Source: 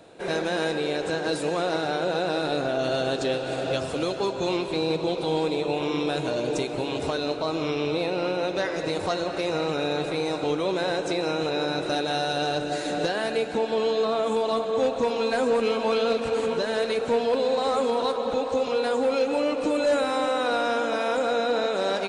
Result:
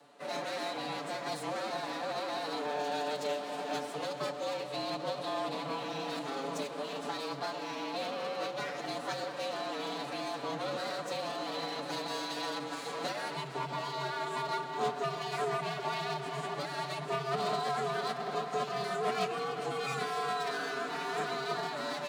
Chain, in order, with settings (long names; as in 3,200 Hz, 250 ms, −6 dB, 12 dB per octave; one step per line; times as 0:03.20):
lower of the sound and its delayed copy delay 7.8 ms
phase-vocoder pitch shift with formants kept +2.5 semitones
frequency shifter +130 Hz
level −8 dB